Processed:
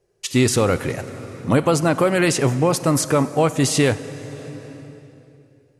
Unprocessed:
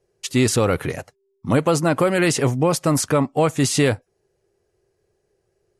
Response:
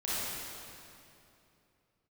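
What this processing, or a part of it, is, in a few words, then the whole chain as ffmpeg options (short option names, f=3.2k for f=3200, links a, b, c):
compressed reverb return: -filter_complex "[0:a]asplit=2[a][b];[1:a]atrim=start_sample=2205[c];[b][c]afir=irnorm=-1:irlink=0,acompressor=threshold=-17dB:ratio=6,volume=-12dB[d];[a][d]amix=inputs=2:normalize=0"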